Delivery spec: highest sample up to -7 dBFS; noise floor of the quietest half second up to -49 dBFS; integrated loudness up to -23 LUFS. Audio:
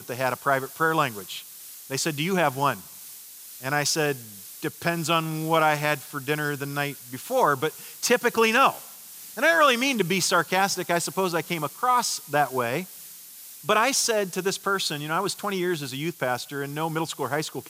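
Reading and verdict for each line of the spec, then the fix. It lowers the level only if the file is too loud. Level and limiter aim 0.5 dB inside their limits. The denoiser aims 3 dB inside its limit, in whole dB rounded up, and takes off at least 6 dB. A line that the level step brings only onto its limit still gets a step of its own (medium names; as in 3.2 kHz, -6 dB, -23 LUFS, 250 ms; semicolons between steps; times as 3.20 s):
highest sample -8.0 dBFS: pass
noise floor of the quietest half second -44 dBFS: fail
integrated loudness -24.5 LUFS: pass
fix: noise reduction 8 dB, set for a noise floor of -44 dBFS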